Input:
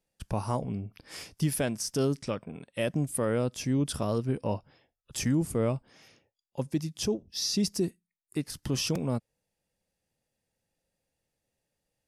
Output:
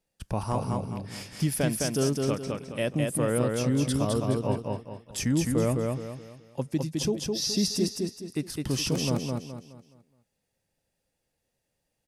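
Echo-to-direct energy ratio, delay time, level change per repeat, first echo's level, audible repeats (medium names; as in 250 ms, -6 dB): -2.5 dB, 210 ms, -9.0 dB, -3.0 dB, 4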